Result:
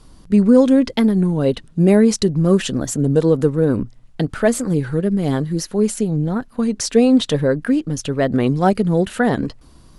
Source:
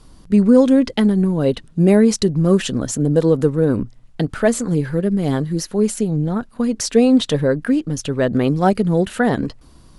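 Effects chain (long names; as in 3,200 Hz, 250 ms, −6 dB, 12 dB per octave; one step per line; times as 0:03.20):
wow of a warped record 33 1/3 rpm, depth 100 cents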